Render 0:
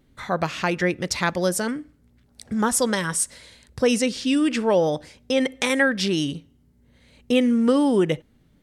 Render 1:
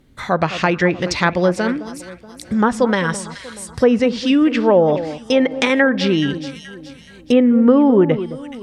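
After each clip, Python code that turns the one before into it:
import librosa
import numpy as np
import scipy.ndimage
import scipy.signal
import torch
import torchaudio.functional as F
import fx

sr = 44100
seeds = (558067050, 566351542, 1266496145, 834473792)

y = fx.echo_alternate(x, sr, ms=213, hz=1200.0, feedback_pct=62, wet_db=-12.0)
y = fx.env_lowpass_down(y, sr, base_hz=1400.0, full_db=-15.0)
y = F.gain(torch.from_numpy(y), 6.5).numpy()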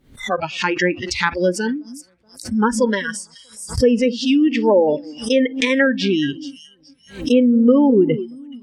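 y = fx.noise_reduce_blind(x, sr, reduce_db=23)
y = fx.pre_swell(y, sr, db_per_s=140.0)
y = F.gain(torch.from_numpy(y), -1.0).numpy()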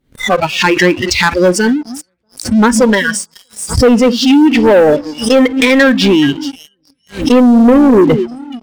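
y = fx.leveller(x, sr, passes=3)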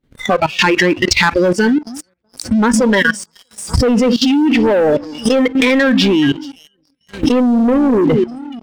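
y = fx.high_shelf(x, sr, hz=6100.0, db=-7.0)
y = fx.level_steps(y, sr, step_db=16)
y = F.gain(torch.from_numpy(y), 4.5).numpy()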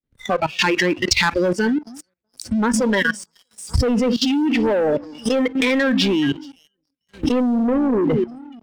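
y = fx.band_widen(x, sr, depth_pct=40)
y = F.gain(torch.from_numpy(y), -6.0).numpy()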